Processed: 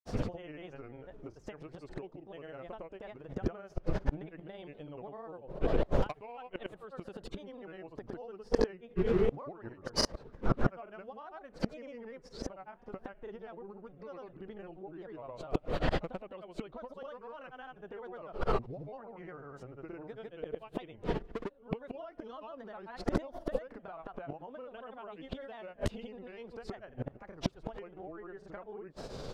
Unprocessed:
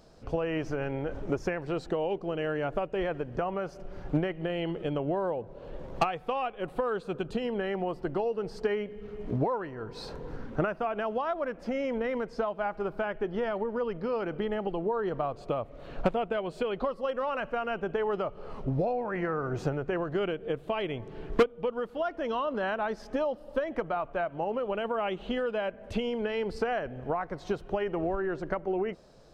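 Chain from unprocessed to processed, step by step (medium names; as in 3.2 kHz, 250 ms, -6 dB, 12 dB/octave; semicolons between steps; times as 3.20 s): inverted gate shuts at -30 dBFS, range -30 dB; granulator, pitch spread up and down by 3 st; trim +15.5 dB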